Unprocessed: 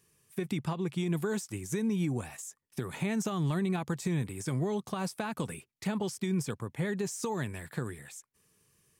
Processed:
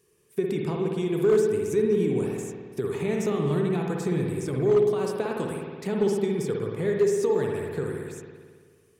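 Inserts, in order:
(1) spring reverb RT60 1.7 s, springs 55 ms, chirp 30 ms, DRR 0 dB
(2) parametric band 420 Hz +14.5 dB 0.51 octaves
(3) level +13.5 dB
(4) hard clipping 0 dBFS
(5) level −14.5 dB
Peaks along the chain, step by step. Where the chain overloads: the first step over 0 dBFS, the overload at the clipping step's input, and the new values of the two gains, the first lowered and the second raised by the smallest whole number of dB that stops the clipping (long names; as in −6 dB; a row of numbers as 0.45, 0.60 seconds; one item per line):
−16.0, −9.5, +4.0, 0.0, −14.5 dBFS
step 3, 4.0 dB
step 3 +9.5 dB, step 5 −10.5 dB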